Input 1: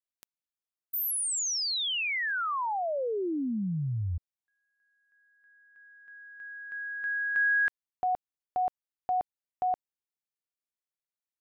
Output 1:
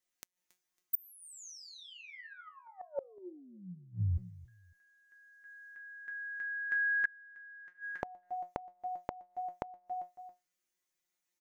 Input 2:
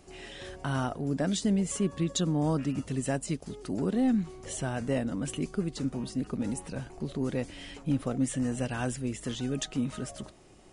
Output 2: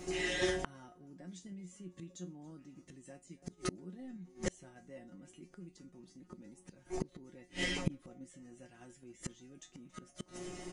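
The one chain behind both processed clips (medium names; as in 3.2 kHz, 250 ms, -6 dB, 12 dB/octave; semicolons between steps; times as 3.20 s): graphic EQ with 31 bands 315 Hz +7 dB, 2 kHz +6 dB, 6.3 kHz +7 dB; on a send: feedback delay 276 ms, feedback 27%, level -21 dB; on the sum: dynamic bell 230 Hz, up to +4 dB, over -36 dBFS, Q 1.3; in parallel at +2 dB: level held to a coarse grid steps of 10 dB; on the sum: feedback comb 180 Hz, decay 0.2 s, harmonics all, mix 90%; inverted gate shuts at -32 dBFS, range -32 dB; trim +12 dB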